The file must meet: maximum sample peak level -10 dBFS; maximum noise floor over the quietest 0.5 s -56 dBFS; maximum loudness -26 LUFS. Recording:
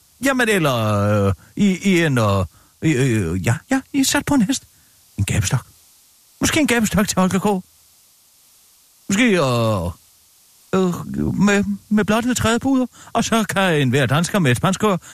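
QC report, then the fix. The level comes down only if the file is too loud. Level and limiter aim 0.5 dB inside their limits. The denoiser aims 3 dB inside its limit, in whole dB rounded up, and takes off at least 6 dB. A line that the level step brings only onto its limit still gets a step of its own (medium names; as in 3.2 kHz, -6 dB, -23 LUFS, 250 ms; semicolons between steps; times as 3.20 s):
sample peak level -4.5 dBFS: fail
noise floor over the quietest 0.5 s -53 dBFS: fail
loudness -18.5 LUFS: fail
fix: trim -8 dB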